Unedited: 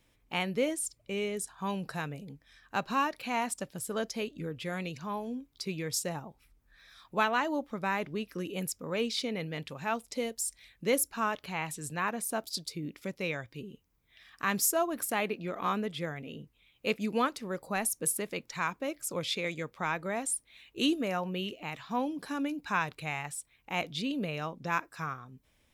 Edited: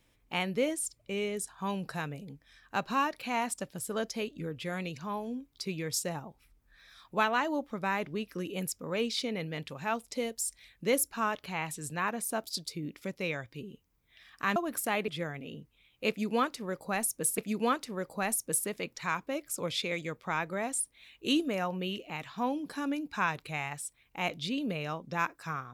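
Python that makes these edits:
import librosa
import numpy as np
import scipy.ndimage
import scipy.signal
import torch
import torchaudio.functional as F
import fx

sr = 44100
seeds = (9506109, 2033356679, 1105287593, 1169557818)

y = fx.edit(x, sr, fx.cut(start_s=14.56, length_s=0.25),
    fx.cut(start_s=15.33, length_s=0.57),
    fx.repeat(start_s=16.91, length_s=1.29, count=2), tone=tone)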